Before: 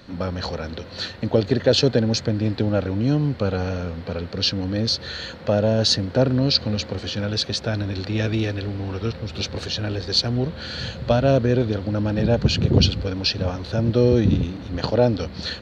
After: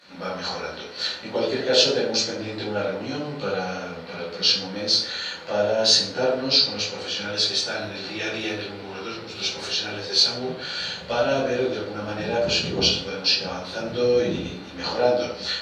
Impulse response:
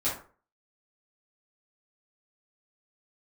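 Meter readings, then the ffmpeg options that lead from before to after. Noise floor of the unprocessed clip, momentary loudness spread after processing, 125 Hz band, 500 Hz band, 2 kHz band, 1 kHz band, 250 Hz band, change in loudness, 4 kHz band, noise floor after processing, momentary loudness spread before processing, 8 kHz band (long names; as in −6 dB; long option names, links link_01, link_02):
−37 dBFS, 13 LU, −15.5 dB, −1.5 dB, +3.0 dB, +1.5 dB, −8.5 dB, −1.0 dB, +3.0 dB, −37 dBFS, 11 LU, can't be measured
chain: -filter_complex "[0:a]highpass=frequency=1300:poles=1[link_01];[1:a]atrim=start_sample=2205,asetrate=27342,aresample=44100[link_02];[link_01][link_02]afir=irnorm=-1:irlink=0,volume=-6dB"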